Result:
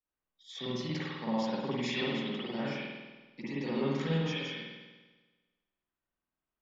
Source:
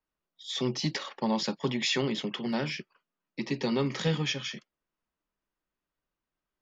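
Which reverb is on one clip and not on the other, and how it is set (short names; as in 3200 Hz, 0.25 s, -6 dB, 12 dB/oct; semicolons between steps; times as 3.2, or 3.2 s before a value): spring tank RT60 1.3 s, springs 49 ms, chirp 75 ms, DRR -9.5 dB; gain -13 dB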